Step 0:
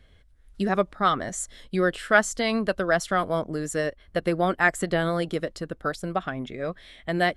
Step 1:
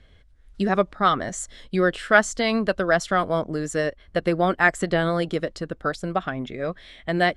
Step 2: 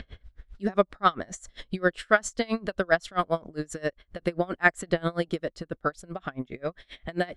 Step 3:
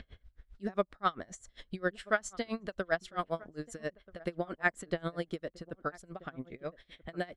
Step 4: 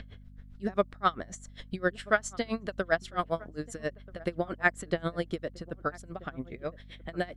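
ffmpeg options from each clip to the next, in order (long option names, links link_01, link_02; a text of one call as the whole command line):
ffmpeg -i in.wav -af "lowpass=7900,volume=2.5dB" out.wav
ffmpeg -i in.wav -filter_complex "[0:a]acrossover=split=5200[link_01][link_02];[link_01]acompressor=mode=upward:threshold=-29dB:ratio=2.5[link_03];[link_03][link_02]amix=inputs=2:normalize=0,aeval=exprs='val(0)*pow(10,-27*(0.5-0.5*cos(2*PI*7.5*n/s))/20)':channel_layout=same" out.wav
ffmpeg -i in.wav -filter_complex "[0:a]asplit=2[link_01][link_02];[link_02]adelay=1283,volume=-21dB,highshelf=frequency=4000:gain=-28.9[link_03];[link_01][link_03]amix=inputs=2:normalize=0,volume=-8.5dB" out.wav
ffmpeg -i in.wav -af "aeval=exprs='val(0)+0.00224*(sin(2*PI*50*n/s)+sin(2*PI*2*50*n/s)/2+sin(2*PI*3*50*n/s)/3+sin(2*PI*4*50*n/s)/4+sin(2*PI*5*50*n/s)/5)':channel_layout=same,volume=4dB" out.wav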